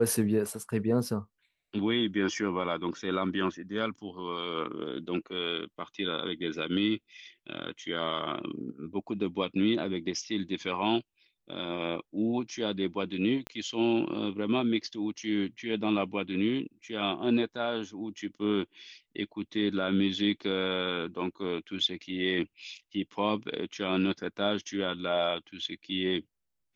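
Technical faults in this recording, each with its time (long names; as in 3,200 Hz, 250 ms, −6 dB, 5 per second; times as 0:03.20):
0:13.47: click −22 dBFS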